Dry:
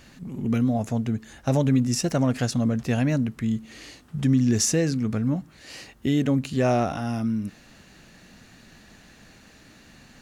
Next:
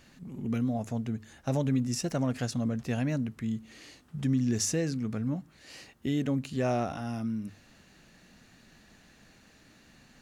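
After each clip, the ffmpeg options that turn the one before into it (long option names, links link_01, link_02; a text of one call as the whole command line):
ffmpeg -i in.wav -af "bandreject=frequency=50:width_type=h:width=6,bandreject=frequency=100:width_type=h:width=6,volume=-7dB" out.wav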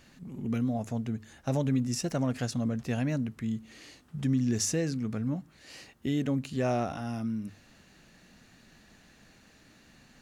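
ffmpeg -i in.wav -af anull out.wav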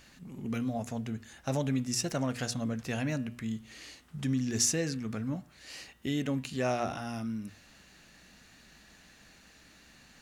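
ffmpeg -i in.wav -af "tiltshelf=frequency=770:gain=-3.5,aeval=exprs='val(0)+0.000447*(sin(2*PI*60*n/s)+sin(2*PI*2*60*n/s)/2+sin(2*PI*3*60*n/s)/3+sin(2*PI*4*60*n/s)/4+sin(2*PI*5*60*n/s)/5)':channel_layout=same,bandreject=frequency=120.6:width_type=h:width=4,bandreject=frequency=241.2:width_type=h:width=4,bandreject=frequency=361.8:width_type=h:width=4,bandreject=frequency=482.4:width_type=h:width=4,bandreject=frequency=603:width_type=h:width=4,bandreject=frequency=723.6:width_type=h:width=4,bandreject=frequency=844.2:width_type=h:width=4,bandreject=frequency=964.8:width_type=h:width=4,bandreject=frequency=1085.4:width_type=h:width=4,bandreject=frequency=1206:width_type=h:width=4,bandreject=frequency=1326.6:width_type=h:width=4,bandreject=frequency=1447.2:width_type=h:width=4,bandreject=frequency=1567.8:width_type=h:width=4,bandreject=frequency=1688.4:width_type=h:width=4,bandreject=frequency=1809:width_type=h:width=4,bandreject=frequency=1929.6:width_type=h:width=4,bandreject=frequency=2050.2:width_type=h:width=4,bandreject=frequency=2170.8:width_type=h:width=4,bandreject=frequency=2291.4:width_type=h:width=4,bandreject=frequency=2412:width_type=h:width=4,bandreject=frequency=2532.6:width_type=h:width=4,bandreject=frequency=2653.2:width_type=h:width=4,bandreject=frequency=2773.8:width_type=h:width=4,bandreject=frequency=2894.4:width_type=h:width=4,bandreject=frequency=3015:width_type=h:width=4,bandreject=frequency=3135.6:width_type=h:width=4,bandreject=frequency=3256.2:width_type=h:width=4,bandreject=frequency=3376.8:width_type=h:width=4,bandreject=frequency=3497.4:width_type=h:width=4,bandreject=frequency=3618:width_type=h:width=4,bandreject=frequency=3738.6:width_type=h:width=4" out.wav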